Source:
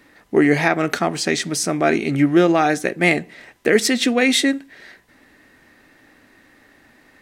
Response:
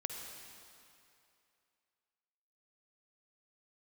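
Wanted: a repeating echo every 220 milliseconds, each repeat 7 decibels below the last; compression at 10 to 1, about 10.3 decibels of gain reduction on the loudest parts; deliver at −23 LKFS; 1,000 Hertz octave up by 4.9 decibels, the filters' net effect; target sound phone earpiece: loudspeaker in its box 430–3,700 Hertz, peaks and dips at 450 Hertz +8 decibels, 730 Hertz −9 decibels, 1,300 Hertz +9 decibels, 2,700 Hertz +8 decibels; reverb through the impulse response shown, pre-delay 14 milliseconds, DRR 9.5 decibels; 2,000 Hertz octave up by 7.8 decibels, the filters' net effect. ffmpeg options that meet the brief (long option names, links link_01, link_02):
-filter_complex "[0:a]equalizer=frequency=1000:width_type=o:gain=3,equalizer=frequency=2000:width_type=o:gain=5,acompressor=threshold=-19dB:ratio=10,aecho=1:1:220|440|660|880|1100:0.447|0.201|0.0905|0.0407|0.0183,asplit=2[link_01][link_02];[1:a]atrim=start_sample=2205,adelay=14[link_03];[link_02][link_03]afir=irnorm=-1:irlink=0,volume=-10dB[link_04];[link_01][link_04]amix=inputs=2:normalize=0,highpass=430,equalizer=frequency=450:width_type=q:width=4:gain=8,equalizer=frequency=730:width_type=q:width=4:gain=-9,equalizer=frequency=1300:width_type=q:width=4:gain=9,equalizer=frequency=2700:width_type=q:width=4:gain=8,lowpass=frequency=3700:width=0.5412,lowpass=frequency=3700:width=1.3066,volume=-0.5dB"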